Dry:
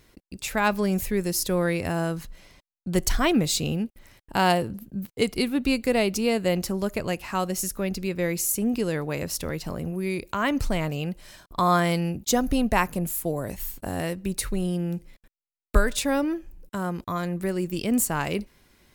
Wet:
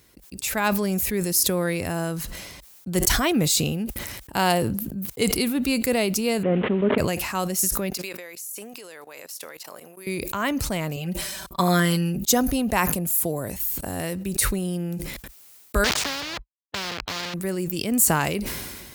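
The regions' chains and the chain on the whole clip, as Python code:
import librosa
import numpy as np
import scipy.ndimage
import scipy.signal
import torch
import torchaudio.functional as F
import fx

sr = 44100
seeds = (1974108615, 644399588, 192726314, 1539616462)

y = fx.chain(x, sr, fx.delta_mod(bps=16000, step_db=-36.0),
    fx.highpass(hz=130.0, slope=12),
    fx.small_body(hz=(250.0, 420.0), ring_ms=40, db=11), at=(6.43, 6.98))
y = fx.chain(y, sr, fx.highpass(hz=630.0, slope=12),
    fx.level_steps(step_db=21), at=(7.9, 10.07))
y = fx.chain(y, sr, fx.comb(ms=5.2, depth=0.97),
    fx.upward_expand(threshold_db=-41.0, expansion=1.5), at=(10.96, 12.33))
y = fx.chain(y, sr, fx.sample_gate(floor_db=-30.0),
    fx.air_absorb(metres=240.0),
    fx.spectral_comp(ratio=4.0), at=(15.84, 17.34))
y = scipy.signal.sosfilt(scipy.signal.butter(4, 45.0, 'highpass', fs=sr, output='sos'), y)
y = fx.high_shelf(y, sr, hz=6300.0, db=10.0)
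y = fx.sustainer(y, sr, db_per_s=34.0)
y = F.gain(torch.from_numpy(y), -1.0).numpy()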